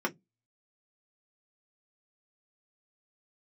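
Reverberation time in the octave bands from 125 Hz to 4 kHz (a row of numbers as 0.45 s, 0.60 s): 0.25 s, 0.25 s, 0.15 s, 0.10 s, 0.10 s, 0.10 s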